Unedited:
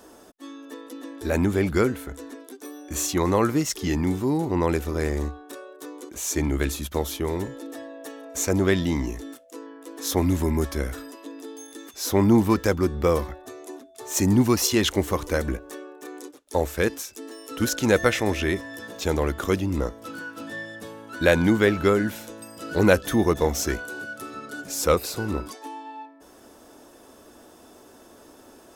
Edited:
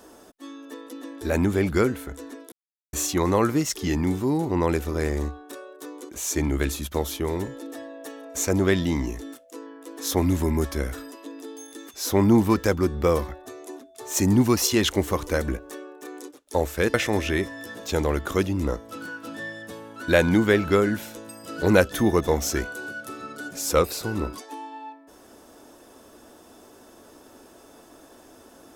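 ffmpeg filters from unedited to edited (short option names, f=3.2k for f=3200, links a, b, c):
-filter_complex "[0:a]asplit=4[a][b][c][d];[a]atrim=end=2.52,asetpts=PTS-STARTPTS,afade=t=out:st=2.516:d=0.004:c=hsin[e];[b]atrim=start=2.52:end=2.93,asetpts=PTS-STARTPTS,volume=0[f];[c]atrim=start=2.93:end=16.942,asetpts=PTS-STARTPTS,afade=t=in:d=0.004:c=hsin[g];[d]atrim=start=18.068[h];[e][f][g]concat=n=3:v=0:a=1[i];[i][h]acrossfade=d=0.004:c1=hsin:c2=hsin"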